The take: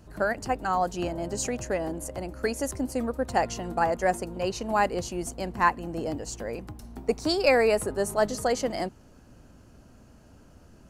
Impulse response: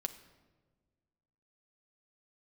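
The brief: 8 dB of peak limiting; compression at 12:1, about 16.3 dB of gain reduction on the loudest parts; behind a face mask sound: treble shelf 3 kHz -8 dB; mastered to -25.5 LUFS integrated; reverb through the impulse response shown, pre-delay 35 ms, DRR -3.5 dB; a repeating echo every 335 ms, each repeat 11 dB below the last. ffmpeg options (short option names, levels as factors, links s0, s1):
-filter_complex "[0:a]acompressor=threshold=0.0224:ratio=12,alimiter=level_in=2:limit=0.0631:level=0:latency=1,volume=0.501,aecho=1:1:335|670|1005:0.282|0.0789|0.0221,asplit=2[s0][s1];[1:a]atrim=start_sample=2205,adelay=35[s2];[s1][s2]afir=irnorm=-1:irlink=0,volume=1.58[s3];[s0][s3]amix=inputs=2:normalize=0,highshelf=f=3000:g=-8,volume=2.99"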